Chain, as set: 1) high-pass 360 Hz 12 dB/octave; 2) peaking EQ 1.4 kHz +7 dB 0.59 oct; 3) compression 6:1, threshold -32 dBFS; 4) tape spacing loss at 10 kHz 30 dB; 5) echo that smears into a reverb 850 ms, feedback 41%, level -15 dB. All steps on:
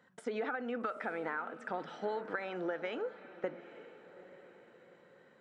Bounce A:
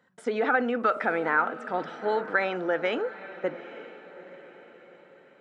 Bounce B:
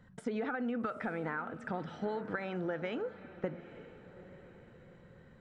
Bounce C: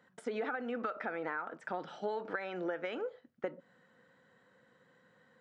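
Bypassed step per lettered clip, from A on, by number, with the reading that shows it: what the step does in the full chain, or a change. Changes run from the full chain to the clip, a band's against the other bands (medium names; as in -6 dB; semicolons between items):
3, mean gain reduction 9.5 dB; 1, momentary loudness spread change +2 LU; 5, echo-to-direct -14.0 dB to none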